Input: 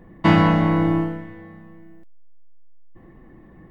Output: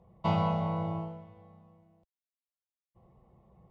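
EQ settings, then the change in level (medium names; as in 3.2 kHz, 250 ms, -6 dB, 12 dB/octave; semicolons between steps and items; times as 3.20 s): high-pass 58 Hz; distance through air 99 m; static phaser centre 710 Hz, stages 4; -7.5 dB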